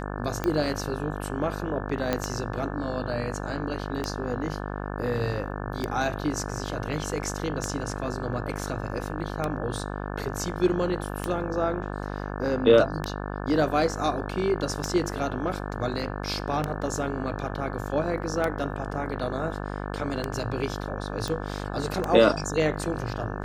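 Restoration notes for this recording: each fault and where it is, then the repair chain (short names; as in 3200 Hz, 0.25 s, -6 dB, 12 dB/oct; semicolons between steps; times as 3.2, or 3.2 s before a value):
buzz 50 Hz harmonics 35 -33 dBFS
tick 33 1/3 rpm -13 dBFS
2.13 pop -10 dBFS
21.28 pop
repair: de-click; de-hum 50 Hz, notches 35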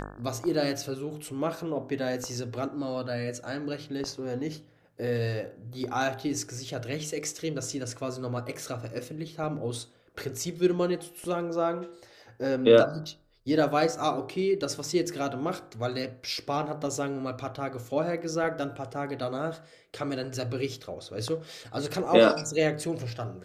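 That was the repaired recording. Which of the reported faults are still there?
2.13 pop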